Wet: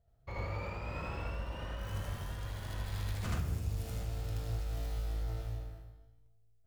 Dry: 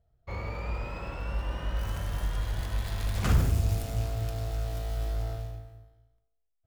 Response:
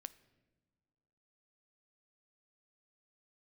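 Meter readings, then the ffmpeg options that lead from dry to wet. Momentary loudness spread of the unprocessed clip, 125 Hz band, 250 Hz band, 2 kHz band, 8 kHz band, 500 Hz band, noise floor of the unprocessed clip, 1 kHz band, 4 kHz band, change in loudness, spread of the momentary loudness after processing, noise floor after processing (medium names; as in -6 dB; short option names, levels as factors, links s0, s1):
11 LU, -7.0 dB, -7.0 dB, -5.0 dB, -7.5 dB, -6.0 dB, -76 dBFS, -5.5 dB, -6.0 dB, -7.5 dB, 6 LU, -65 dBFS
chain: -filter_complex "[0:a]acompressor=threshold=0.0158:ratio=4,flanger=delay=7.2:depth=6.4:regen=75:speed=0.41:shape=sinusoidal,asplit=2[s0][s1];[1:a]atrim=start_sample=2205,adelay=78[s2];[s1][s2]afir=irnorm=-1:irlink=0,volume=2.24[s3];[s0][s3]amix=inputs=2:normalize=0,volume=1.26"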